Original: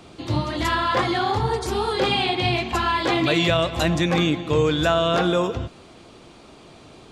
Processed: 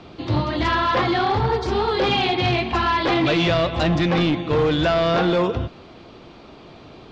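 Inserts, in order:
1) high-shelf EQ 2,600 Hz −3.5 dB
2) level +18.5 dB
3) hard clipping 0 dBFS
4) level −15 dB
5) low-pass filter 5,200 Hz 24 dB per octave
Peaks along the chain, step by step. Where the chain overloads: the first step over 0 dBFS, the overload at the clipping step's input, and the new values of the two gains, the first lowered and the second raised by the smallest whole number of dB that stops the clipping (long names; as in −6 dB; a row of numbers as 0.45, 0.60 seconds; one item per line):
−9.5, +9.0, 0.0, −15.0, −13.5 dBFS
step 2, 9.0 dB
step 2 +9.5 dB, step 4 −6 dB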